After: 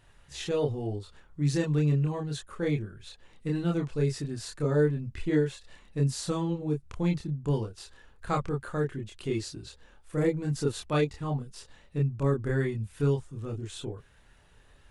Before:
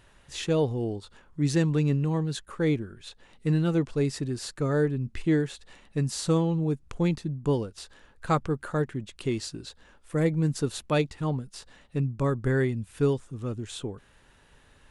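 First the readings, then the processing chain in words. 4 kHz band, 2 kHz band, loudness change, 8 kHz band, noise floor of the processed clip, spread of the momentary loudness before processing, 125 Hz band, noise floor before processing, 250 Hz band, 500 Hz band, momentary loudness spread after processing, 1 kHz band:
-3.0 dB, -3.0 dB, -2.0 dB, -3.0 dB, -59 dBFS, 15 LU, -1.5 dB, -59 dBFS, -3.0 dB, -1.5 dB, 15 LU, -3.0 dB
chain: chorus voices 6, 0.39 Hz, delay 28 ms, depth 1.5 ms

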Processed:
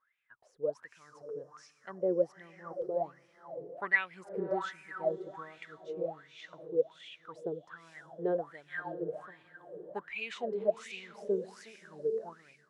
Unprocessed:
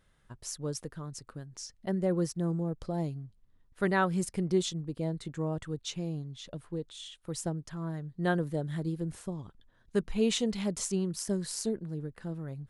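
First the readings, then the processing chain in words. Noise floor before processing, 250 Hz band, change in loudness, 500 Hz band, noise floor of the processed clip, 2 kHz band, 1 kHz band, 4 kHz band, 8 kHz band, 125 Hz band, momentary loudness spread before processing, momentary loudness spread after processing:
-67 dBFS, -11.5 dB, -2.5 dB, +1.0 dB, -69 dBFS, +3.5 dB, -2.5 dB, -11.5 dB, under -20 dB, -19.0 dB, 14 LU, 18 LU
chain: diffused feedback echo 0.551 s, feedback 41%, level -10 dB; wah 1.3 Hz 430–2500 Hz, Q 15; AGC gain up to 9 dB; gain +7 dB

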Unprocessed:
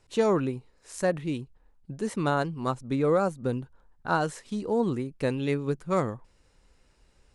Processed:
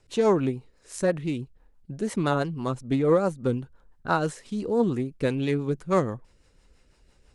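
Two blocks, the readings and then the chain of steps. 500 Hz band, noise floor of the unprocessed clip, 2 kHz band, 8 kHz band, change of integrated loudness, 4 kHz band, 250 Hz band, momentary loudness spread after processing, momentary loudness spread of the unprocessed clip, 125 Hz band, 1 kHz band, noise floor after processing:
+2.0 dB, -64 dBFS, 0.0 dB, +1.5 dB, +2.0 dB, +1.5 dB, +2.5 dB, 15 LU, 16 LU, +2.5 dB, +0.5 dB, -62 dBFS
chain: rotary speaker horn 6 Hz; Doppler distortion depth 0.12 ms; gain +4 dB

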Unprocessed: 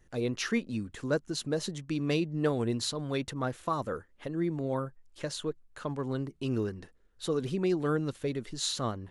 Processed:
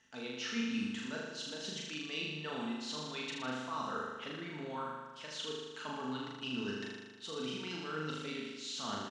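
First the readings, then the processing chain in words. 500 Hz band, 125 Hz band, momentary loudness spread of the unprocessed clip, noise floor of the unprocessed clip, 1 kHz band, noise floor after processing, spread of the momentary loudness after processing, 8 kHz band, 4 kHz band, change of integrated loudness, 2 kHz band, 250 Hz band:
-11.5 dB, -14.5 dB, 9 LU, -62 dBFS, -3.5 dB, -50 dBFS, 5 LU, -7.5 dB, -1.5 dB, -7.0 dB, -1.0 dB, -8.0 dB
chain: tilt shelf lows -9.5 dB, about 1500 Hz; comb 4.5 ms, depth 35%; reverse; compressor, threshold -45 dBFS, peak gain reduction 22.5 dB; reverse; speaker cabinet 110–6200 Hz, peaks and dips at 240 Hz +9 dB, 880 Hz +8 dB, 1400 Hz +5 dB, 2900 Hz +8 dB, 4400 Hz -3 dB; flutter echo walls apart 6.7 m, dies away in 1.3 s; gain +1 dB

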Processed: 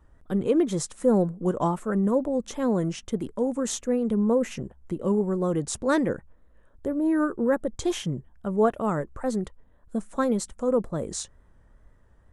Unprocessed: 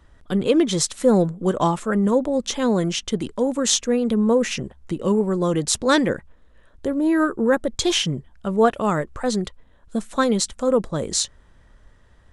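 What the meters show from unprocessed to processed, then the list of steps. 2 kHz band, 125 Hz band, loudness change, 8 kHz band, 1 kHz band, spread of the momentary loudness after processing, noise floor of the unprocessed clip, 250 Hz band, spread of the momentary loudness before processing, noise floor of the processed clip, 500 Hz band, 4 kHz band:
-9.0 dB, -4.0 dB, -5.0 dB, -10.5 dB, -6.0 dB, 10 LU, -53 dBFS, -4.0 dB, 8 LU, -57 dBFS, -4.5 dB, -15.5 dB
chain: bell 3900 Hz -12.5 dB 1.9 oct; wow and flutter 56 cents; gain -4 dB

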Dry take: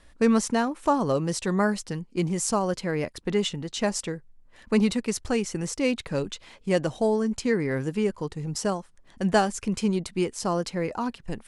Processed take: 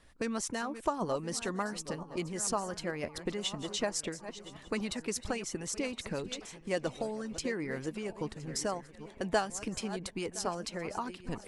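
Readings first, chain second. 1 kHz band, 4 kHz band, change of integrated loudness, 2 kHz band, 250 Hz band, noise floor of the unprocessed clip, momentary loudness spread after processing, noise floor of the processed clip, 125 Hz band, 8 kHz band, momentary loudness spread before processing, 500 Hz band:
-8.0 dB, -4.5 dB, -9.5 dB, -6.5 dB, -12.0 dB, -54 dBFS, 7 LU, -53 dBFS, -12.0 dB, -4.0 dB, 8 LU, -9.5 dB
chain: regenerating reverse delay 0.508 s, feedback 49%, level -14 dB; in parallel at +1 dB: compressor, threshold -31 dBFS, peak gain reduction 14.5 dB; on the sum: band-limited delay 1.107 s, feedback 59%, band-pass 1300 Hz, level -18 dB; harmonic-percussive split harmonic -10 dB; gain -7.5 dB

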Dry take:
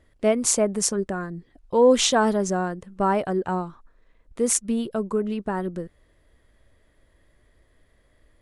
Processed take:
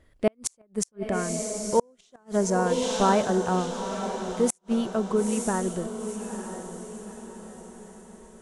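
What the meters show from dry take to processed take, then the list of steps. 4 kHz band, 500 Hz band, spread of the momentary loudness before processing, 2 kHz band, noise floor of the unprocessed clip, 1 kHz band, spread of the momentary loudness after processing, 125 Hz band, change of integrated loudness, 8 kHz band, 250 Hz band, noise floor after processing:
-7.5 dB, -3.0 dB, 14 LU, -3.0 dB, -63 dBFS, -1.0 dB, 18 LU, +0.5 dB, -4.0 dB, -6.0 dB, -1.5 dB, -62 dBFS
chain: diffused feedback echo 0.915 s, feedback 46%, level -9 dB; flipped gate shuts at -10 dBFS, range -41 dB

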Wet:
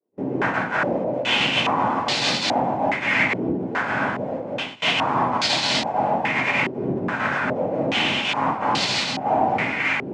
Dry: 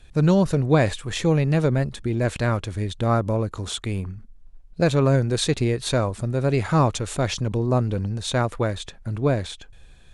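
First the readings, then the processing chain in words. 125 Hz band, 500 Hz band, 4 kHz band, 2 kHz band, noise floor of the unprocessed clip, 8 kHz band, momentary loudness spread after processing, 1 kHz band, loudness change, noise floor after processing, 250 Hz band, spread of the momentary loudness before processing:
-12.0 dB, -2.0 dB, +9.5 dB, +11.5 dB, -47 dBFS, -1.0 dB, 5 LU, +8.5 dB, +1.5 dB, -32 dBFS, -2.5 dB, 10 LU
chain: sample sorter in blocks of 64 samples; noise vocoder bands 4; tilt +4 dB/oct; on a send: echo with dull and thin repeats by turns 0.293 s, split 880 Hz, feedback 85%, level -12 dB; on the sum: shoebox room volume 380 m³, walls furnished, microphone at 4.9 m; reverse; compressor 10:1, threshold -21 dBFS, peak gain reduction 16.5 dB; reverse; pre-echo 48 ms -18 dB; gate with hold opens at -23 dBFS; stepped low-pass 2.4 Hz 390–4200 Hz

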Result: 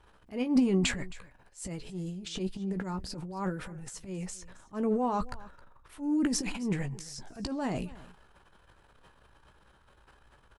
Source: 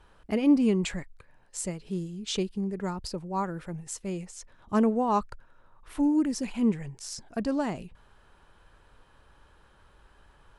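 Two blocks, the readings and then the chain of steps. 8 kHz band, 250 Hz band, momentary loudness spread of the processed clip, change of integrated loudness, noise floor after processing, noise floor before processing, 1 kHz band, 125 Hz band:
-1.0 dB, -4.0 dB, 15 LU, -4.0 dB, -62 dBFS, -60 dBFS, -5.0 dB, -0.5 dB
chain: transient shaper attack -12 dB, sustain +11 dB; doubler 16 ms -10 dB; on a send: echo 0.268 s -20 dB; on the sum: gain -4.5 dB

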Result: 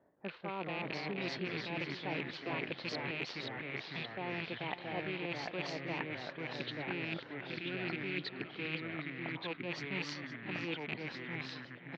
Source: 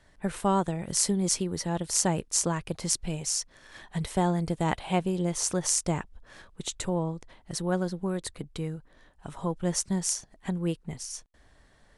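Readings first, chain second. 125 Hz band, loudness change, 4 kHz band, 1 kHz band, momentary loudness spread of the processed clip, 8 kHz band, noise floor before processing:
-13.0 dB, -10.5 dB, -6.0 dB, -10.5 dB, 4 LU, -34.5 dB, -61 dBFS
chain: rattling part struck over -35 dBFS, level -23 dBFS; Chebyshev low-pass 4400 Hz, order 5; low-pass opened by the level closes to 600 Hz, open at -27.5 dBFS; HPF 280 Hz 12 dB/oct; spectral gain 6.35–8.44, 450–1300 Hz -13 dB; reverse; compressor 10:1, threshold -40 dBFS, peak gain reduction 19.5 dB; reverse; echoes that change speed 0.165 s, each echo -2 st, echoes 3; on a send: feedback echo 0.518 s, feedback 34%, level -13 dB; on the sum: gain +3 dB

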